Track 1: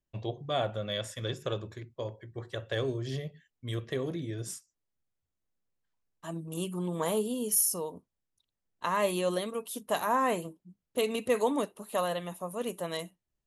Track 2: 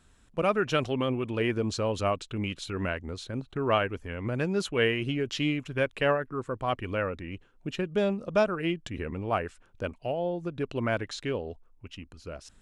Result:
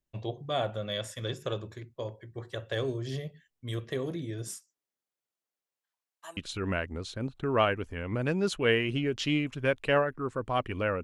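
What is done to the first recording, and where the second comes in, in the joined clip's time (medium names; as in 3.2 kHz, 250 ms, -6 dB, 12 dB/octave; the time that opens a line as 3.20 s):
track 1
4.48–6.37 s: high-pass 210 Hz -> 860 Hz
6.37 s: go over to track 2 from 2.50 s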